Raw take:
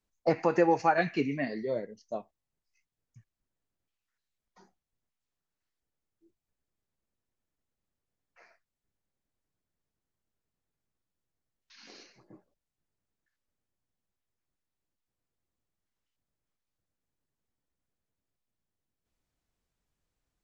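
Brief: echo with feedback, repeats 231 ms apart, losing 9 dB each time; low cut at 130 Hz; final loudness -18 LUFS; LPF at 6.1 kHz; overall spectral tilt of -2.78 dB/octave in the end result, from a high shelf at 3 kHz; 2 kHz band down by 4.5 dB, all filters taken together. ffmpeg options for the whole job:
-af "highpass=130,lowpass=6100,equalizer=f=2000:t=o:g=-3.5,highshelf=f=3000:g=-7,aecho=1:1:231|462|693|924:0.355|0.124|0.0435|0.0152,volume=3.76"

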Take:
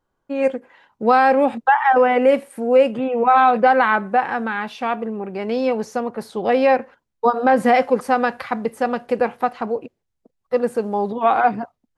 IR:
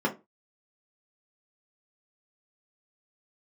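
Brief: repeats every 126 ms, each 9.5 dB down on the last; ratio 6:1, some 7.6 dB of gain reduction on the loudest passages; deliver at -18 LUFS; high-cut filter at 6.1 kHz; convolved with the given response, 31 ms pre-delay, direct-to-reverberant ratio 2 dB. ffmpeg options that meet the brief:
-filter_complex "[0:a]lowpass=6100,acompressor=threshold=0.126:ratio=6,aecho=1:1:126|252|378|504:0.335|0.111|0.0365|0.012,asplit=2[s0][s1];[1:a]atrim=start_sample=2205,adelay=31[s2];[s1][s2]afir=irnorm=-1:irlink=0,volume=0.224[s3];[s0][s3]amix=inputs=2:normalize=0,volume=1.26"

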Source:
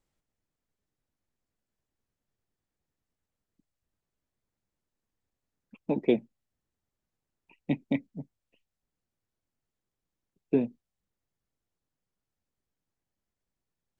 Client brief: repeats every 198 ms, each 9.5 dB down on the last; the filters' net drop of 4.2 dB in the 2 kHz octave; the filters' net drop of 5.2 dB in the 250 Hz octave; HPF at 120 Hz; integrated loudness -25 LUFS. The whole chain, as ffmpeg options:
-af "highpass=120,equalizer=f=250:t=o:g=-6,equalizer=f=2000:t=o:g=-5,aecho=1:1:198|396|594|792:0.335|0.111|0.0365|0.012,volume=3.16"

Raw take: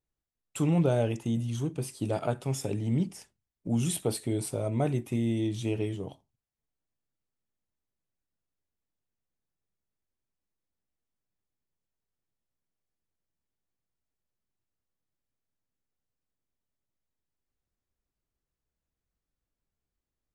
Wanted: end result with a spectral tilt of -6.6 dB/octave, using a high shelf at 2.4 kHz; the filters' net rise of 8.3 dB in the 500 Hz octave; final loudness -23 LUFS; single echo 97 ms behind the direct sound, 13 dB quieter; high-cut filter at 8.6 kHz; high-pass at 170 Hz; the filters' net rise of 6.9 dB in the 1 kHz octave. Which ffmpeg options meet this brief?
-af "highpass=170,lowpass=8600,equalizer=f=500:t=o:g=9,equalizer=f=1000:t=o:g=6,highshelf=f=2400:g=-4,aecho=1:1:97:0.224,volume=1.58"

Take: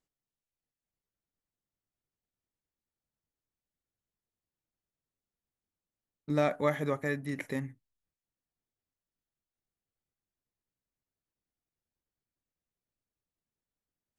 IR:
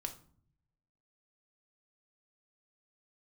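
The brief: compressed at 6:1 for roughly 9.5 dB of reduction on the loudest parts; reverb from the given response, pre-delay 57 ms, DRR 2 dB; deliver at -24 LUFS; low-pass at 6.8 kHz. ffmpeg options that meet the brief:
-filter_complex "[0:a]lowpass=6800,acompressor=threshold=0.0251:ratio=6,asplit=2[s0][s1];[1:a]atrim=start_sample=2205,adelay=57[s2];[s1][s2]afir=irnorm=-1:irlink=0,volume=0.944[s3];[s0][s3]amix=inputs=2:normalize=0,volume=4.22"

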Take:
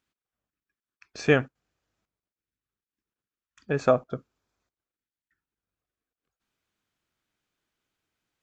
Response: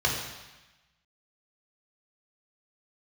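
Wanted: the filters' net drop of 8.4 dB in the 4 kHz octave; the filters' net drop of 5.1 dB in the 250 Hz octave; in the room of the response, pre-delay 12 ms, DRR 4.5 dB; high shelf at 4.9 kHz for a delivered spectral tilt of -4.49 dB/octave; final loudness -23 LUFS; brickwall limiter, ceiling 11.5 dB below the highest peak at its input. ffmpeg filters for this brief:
-filter_complex "[0:a]equalizer=f=250:t=o:g=-6.5,equalizer=f=4000:t=o:g=-8,highshelf=f=4900:g=-8.5,alimiter=limit=0.106:level=0:latency=1,asplit=2[s0][s1];[1:a]atrim=start_sample=2205,adelay=12[s2];[s1][s2]afir=irnorm=-1:irlink=0,volume=0.141[s3];[s0][s3]amix=inputs=2:normalize=0,volume=3.16"

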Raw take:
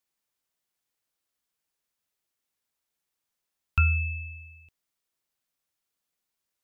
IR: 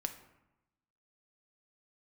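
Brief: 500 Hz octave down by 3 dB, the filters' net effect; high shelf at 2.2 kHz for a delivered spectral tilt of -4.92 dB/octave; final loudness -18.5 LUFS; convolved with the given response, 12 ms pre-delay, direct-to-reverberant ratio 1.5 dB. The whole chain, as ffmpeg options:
-filter_complex "[0:a]equalizer=f=500:t=o:g=-5,highshelf=f=2200:g=6,asplit=2[s0][s1];[1:a]atrim=start_sample=2205,adelay=12[s2];[s1][s2]afir=irnorm=-1:irlink=0,volume=0.841[s3];[s0][s3]amix=inputs=2:normalize=0,volume=2.24"

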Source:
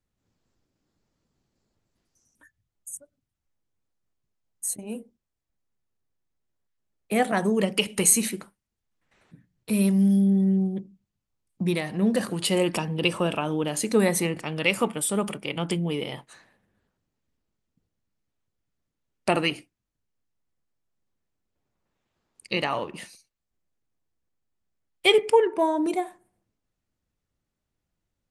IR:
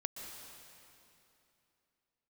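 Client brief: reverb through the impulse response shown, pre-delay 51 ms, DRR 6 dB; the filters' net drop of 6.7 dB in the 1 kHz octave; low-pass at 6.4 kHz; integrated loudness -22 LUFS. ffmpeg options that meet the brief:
-filter_complex "[0:a]lowpass=6400,equalizer=f=1000:t=o:g=-9,asplit=2[s0][s1];[1:a]atrim=start_sample=2205,adelay=51[s2];[s1][s2]afir=irnorm=-1:irlink=0,volume=0.531[s3];[s0][s3]amix=inputs=2:normalize=0,volume=1.33"

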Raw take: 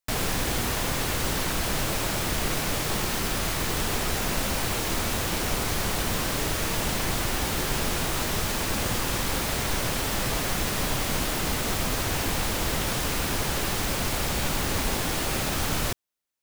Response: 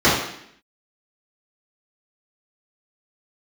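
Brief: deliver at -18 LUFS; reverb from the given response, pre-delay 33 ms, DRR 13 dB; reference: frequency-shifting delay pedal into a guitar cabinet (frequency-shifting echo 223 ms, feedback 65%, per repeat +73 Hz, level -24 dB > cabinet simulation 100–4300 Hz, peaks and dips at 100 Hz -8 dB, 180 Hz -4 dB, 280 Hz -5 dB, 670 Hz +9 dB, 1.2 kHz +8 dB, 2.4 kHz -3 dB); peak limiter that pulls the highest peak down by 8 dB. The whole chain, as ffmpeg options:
-filter_complex "[0:a]alimiter=limit=0.0891:level=0:latency=1,asplit=2[s0][s1];[1:a]atrim=start_sample=2205,adelay=33[s2];[s1][s2]afir=irnorm=-1:irlink=0,volume=0.0141[s3];[s0][s3]amix=inputs=2:normalize=0,asplit=6[s4][s5][s6][s7][s8][s9];[s5]adelay=223,afreqshift=73,volume=0.0631[s10];[s6]adelay=446,afreqshift=146,volume=0.0412[s11];[s7]adelay=669,afreqshift=219,volume=0.0266[s12];[s8]adelay=892,afreqshift=292,volume=0.0174[s13];[s9]adelay=1115,afreqshift=365,volume=0.0112[s14];[s4][s10][s11][s12][s13][s14]amix=inputs=6:normalize=0,highpass=100,equalizer=f=100:t=q:w=4:g=-8,equalizer=f=180:t=q:w=4:g=-4,equalizer=f=280:t=q:w=4:g=-5,equalizer=f=670:t=q:w=4:g=9,equalizer=f=1200:t=q:w=4:g=8,equalizer=f=2400:t=q:w=4:g=-3,lowpass=f=4300:w=0.5412,lowpass=f=4300:w=1.3066,volume=4.47"

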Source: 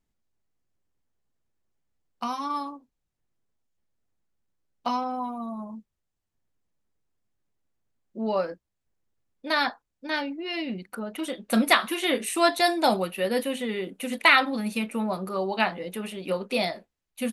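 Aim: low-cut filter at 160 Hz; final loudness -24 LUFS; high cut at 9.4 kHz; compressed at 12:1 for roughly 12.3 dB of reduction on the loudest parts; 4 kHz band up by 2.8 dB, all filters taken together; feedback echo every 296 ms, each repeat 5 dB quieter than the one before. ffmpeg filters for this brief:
-af "highpass=160,lowpass=9400,equalizer=f=4000:t=o:g=3.5,acompressor=threshold=0.0631:ratio=12,aecho=1:1:296|592|888|1184|1480|1776|2072:0.562|0.315|0.176|0.0988|0.0553|0.031|0.0173,volume=2"

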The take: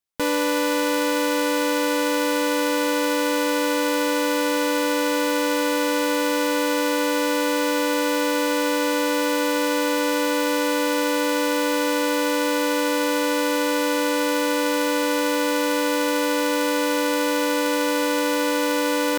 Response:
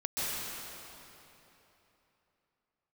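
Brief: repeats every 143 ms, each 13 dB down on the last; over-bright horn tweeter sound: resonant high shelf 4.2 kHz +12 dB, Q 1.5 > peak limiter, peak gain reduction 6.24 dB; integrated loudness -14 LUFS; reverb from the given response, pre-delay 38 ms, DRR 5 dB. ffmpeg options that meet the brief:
-filter_complex "[0:a]aecho=1:1:143|286|429:0.224|0.0493|0.0108,asplit=2[s0][s1];[1:a]atrim=start_sample=2205,adelay=38[s2];[s1][s2]afir=irnorm=-1:irlink=0,volume=0.237[s3];[s0][s3]amix=inputs=2:normalize=0,highshelf=f=4200:t=q:w=1.5:g=12,volume=1.33,alimiter=limit=0.794:level=0:latency=1"

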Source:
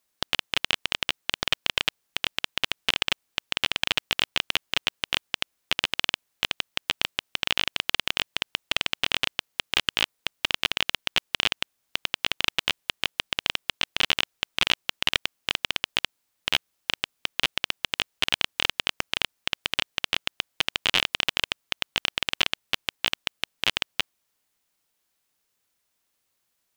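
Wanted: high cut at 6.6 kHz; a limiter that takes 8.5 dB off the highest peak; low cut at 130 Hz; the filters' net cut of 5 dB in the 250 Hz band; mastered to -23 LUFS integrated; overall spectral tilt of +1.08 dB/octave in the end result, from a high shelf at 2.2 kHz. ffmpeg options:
-af "highpass=130,lowpass=6600,equalizer=f=250:t=o:g=-6.5,highshelf=f=2200:g=7.5,volume=2,alimiter=limit=0.891:level=0:latency=1"

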